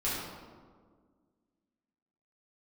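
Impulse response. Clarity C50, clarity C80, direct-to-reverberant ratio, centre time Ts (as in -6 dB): -1.0 dB, 1.5 dB, -9.5 dB, 97 ms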